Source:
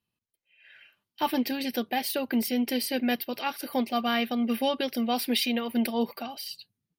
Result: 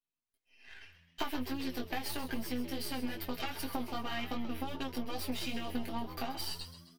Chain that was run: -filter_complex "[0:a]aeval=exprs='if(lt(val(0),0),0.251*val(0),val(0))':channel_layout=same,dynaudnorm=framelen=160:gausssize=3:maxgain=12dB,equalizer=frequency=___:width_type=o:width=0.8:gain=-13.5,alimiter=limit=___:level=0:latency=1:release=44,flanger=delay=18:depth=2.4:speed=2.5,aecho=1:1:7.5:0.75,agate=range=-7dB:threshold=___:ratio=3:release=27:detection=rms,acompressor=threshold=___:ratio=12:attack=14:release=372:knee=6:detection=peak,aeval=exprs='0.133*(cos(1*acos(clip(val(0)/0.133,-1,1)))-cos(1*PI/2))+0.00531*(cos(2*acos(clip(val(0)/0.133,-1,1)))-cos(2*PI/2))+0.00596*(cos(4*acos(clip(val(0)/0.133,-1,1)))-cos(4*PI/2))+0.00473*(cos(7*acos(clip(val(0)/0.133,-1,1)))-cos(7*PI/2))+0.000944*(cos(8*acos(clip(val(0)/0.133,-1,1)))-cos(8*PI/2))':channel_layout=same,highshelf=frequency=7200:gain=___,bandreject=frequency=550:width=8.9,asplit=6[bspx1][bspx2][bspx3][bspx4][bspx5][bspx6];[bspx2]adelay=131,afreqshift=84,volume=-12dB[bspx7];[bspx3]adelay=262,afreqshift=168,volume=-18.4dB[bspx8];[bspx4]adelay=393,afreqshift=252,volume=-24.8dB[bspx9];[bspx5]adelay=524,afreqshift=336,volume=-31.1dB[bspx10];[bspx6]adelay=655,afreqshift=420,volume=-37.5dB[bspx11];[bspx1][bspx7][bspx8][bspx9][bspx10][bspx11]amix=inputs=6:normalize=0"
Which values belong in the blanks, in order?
110, -9.5dB, -42dB, -30dB, -3.5